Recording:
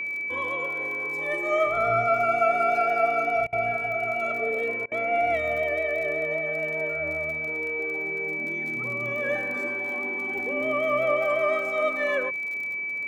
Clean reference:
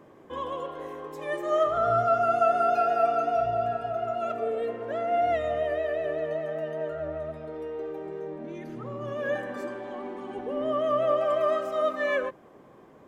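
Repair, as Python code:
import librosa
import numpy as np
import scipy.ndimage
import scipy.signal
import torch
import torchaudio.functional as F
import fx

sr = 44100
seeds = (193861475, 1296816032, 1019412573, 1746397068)

y = fx.fix_declick_ar(x, sr, threshold=6.5)
y = fx.notch(y, sr, hz=2300.0, q=30.0)
y = fx.fix_interpolate(y, sr, at_s=(3.47, 4.86), length_ms=55.0)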